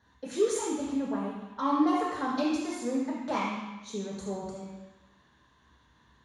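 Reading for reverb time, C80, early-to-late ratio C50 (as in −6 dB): 1.1 s, 2.5 dB, 0.5 dB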